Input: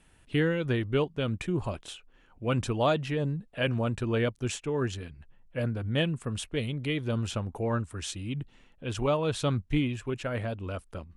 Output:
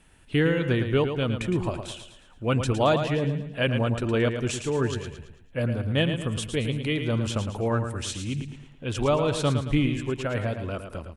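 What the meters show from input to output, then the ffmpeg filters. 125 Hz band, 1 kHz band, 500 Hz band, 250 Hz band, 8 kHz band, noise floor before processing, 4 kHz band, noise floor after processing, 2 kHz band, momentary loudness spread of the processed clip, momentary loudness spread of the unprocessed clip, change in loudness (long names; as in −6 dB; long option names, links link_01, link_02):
+4.0 dB, +4.5 dB, +4.0 dB, +4.0 dB, +4.5 dB, −60 dBFS, +4.5 dB, −53 dBFS, +4.5 dB, 11 LU, 10 LU, +4.0 dB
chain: -af "aecho=1:1:111|222|333|444|555:0.398|0.171|0.0736|0.0317|0.0136,volume=3.5dB"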